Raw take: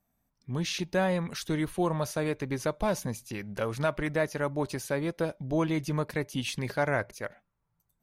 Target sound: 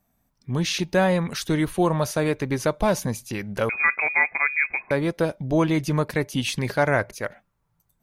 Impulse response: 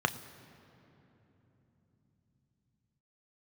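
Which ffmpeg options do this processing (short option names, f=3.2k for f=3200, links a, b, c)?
-filter_complex "[0:a]asettb=1/sr,asplit=3[a][b][c];[a]atrim=end=3.694[d];[b]atrim=start=3.69:end=4.91,asetpts=PTS-STARTPTS,afade=t=in:d=0.004:c=qsin,afade=t=out:st=1.216:d=0.004:c=qsin,lowpass=f=2.2k:t=q:w=0.5098,lowpass=f=2.2k:t=q:w=0.6013,lowpass=f=2.2k:t=q:w=0.9,lowpass=f=2.2k:t=q:w=2.563,afreqshift=-2600[e];[c]atrim=start=4.906[f];[d][e]acrossfade=d=0.004:c1=hsin:c2=qsin[g];[g][f]acrossfade=d=0.004:c1=qsin:c2=hsin,volume=7dB"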